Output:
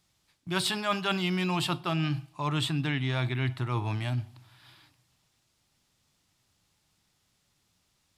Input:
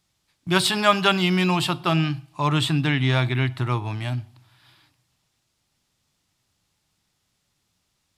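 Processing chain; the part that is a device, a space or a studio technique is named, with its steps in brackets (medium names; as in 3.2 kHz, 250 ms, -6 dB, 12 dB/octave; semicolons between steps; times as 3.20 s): compression on the reversed sound (reverse; compression 4:1, threshold -27 dBFS, peak gain reduction 13 dB; reverse)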